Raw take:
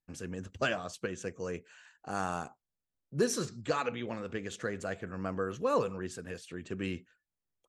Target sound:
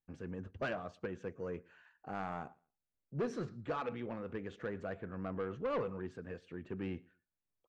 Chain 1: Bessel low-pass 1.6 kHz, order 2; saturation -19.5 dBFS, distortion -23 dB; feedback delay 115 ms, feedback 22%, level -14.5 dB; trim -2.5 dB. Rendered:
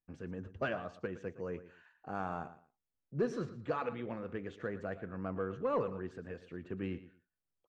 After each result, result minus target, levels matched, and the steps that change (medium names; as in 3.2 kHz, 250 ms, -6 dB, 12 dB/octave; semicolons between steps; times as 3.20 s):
echo-to-direct +11 dB; saturation: distortion -11 dB
change: feedback delay 115 ms, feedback 22%, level -25.5 dB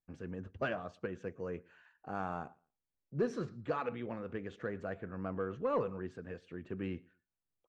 saturation: distortion -11 dB
change: saturation -27.5 dBFS, distortion -12 dB